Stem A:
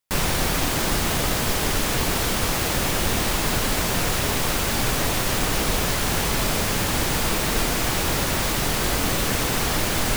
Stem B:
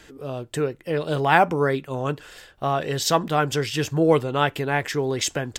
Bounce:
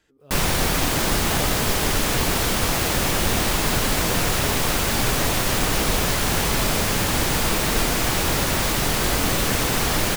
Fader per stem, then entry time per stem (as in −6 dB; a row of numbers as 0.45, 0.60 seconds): +1.5, −18.0 decibels; 0.20, 0.00 seconds